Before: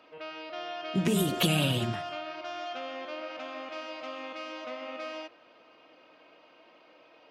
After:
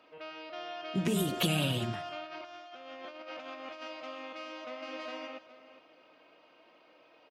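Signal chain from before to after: 2.23–3.88 negative-ratio compressor -41 dBFS, ratio -0.5; 4.41–4.97 echo throw 0.41 s, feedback 20%, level -0.5 dB; gain -3.5 dB

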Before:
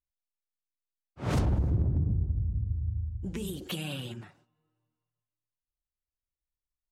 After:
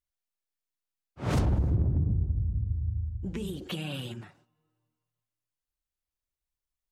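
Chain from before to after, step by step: 1.75–3.94 high shelf 6400 Hz -10.5 dB; gain +1 dB

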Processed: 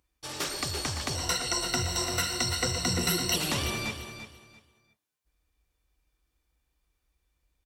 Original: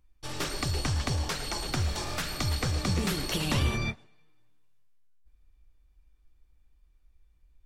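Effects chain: 1.15–3.36 ripple EQ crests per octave 2, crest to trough 18 dB; feedback echo 0.342 s, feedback 24%, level -10 dB; soft clip -14 dBFS, distortion -26 dB; HPF 52 Hz; tone controls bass -7 dB, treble +4 dB

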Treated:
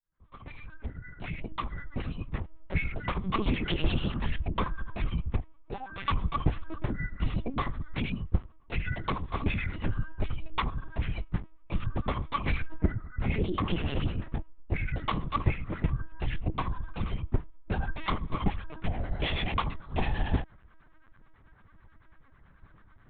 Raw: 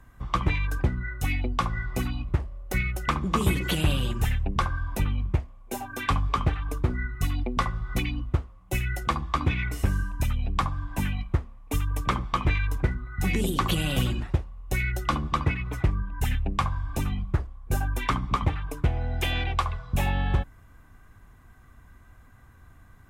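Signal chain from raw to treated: opening faded in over 2.71 s; 12.56–14.9 LPF 1900 Hz 6 dB/oct; dynamic EQ 1400 Hz, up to -6 dB, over -43 dBFS, Q 3.2; harmonic tremolo 9.1 Hz, depth 70%, crossover 780 Hz; LPC vocoder at 8 kHz pitch kept

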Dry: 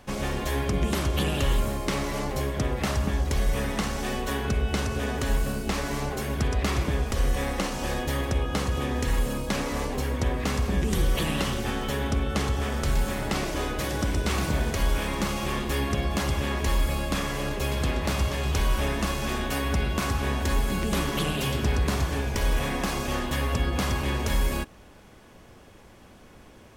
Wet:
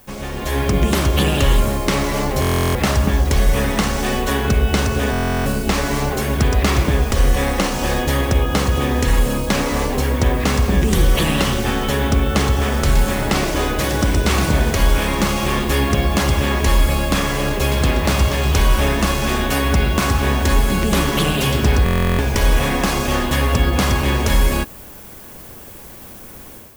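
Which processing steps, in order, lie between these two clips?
added noise violet -50 dBFS; AGC gain up to 10 dB; stuck buffer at 2.4/5.11/21.84, samples 1024, times 14

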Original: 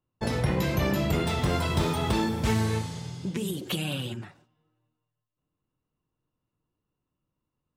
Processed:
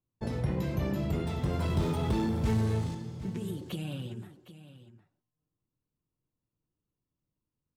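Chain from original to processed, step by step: 1.59–2.95 power-law curve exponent 0.7; tilt shelf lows +5 dB, about 660 Hz; echo 0.76 s -15 dB; gain -8.5 dB

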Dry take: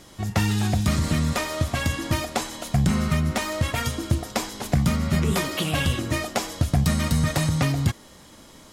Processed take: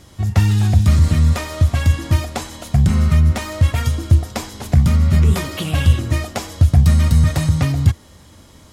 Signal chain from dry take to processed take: bell 82 Hz +14.5 dB 1.1 oct

